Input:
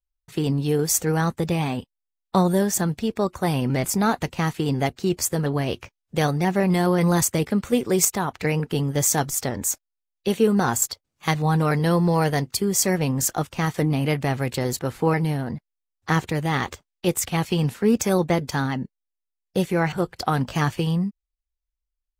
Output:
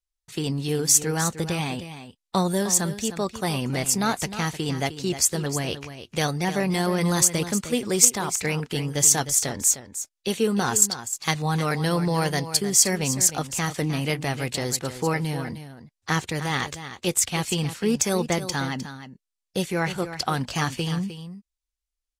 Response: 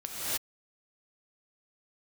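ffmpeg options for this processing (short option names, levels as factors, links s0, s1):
-filter_complex "[0:a]lowpass=10000,highshelf=f=2500:g=11.5,asplit=2[s0][s1];[s1]aecho=0:1:307:0.266[s2];[s0][s2]amix=inputs=2:normalize=0,volume=0.596"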